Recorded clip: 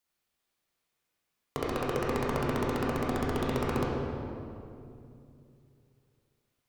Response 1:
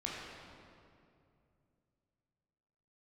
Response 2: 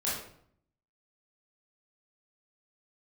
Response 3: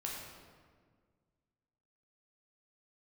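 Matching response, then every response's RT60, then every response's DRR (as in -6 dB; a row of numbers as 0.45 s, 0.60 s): 1; 2.5 s, 0.60 s, 1.7 s; -5.0 dB, -8.5 dB, -3.5 dB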